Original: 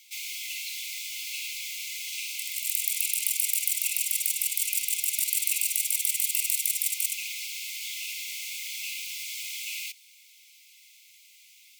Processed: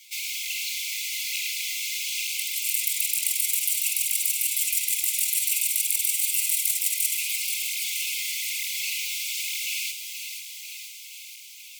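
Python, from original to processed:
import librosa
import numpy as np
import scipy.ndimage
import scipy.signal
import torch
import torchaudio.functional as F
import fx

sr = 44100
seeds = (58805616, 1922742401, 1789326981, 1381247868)

p1 = fx.rider(x, sr, range_db=4, speed_s=0.5)
p2 = x + F.gain(torch.from_numpy(p1), -0.5).numpy()
p3 = fx.echo_wet_highpass(p2, sr, ms=479, feedback_pct=68, hz=2500.0, wet_db=-7.0)
y = fx.flanger_cancel(p3, sr, hz=1.1, depth_ms=7.9)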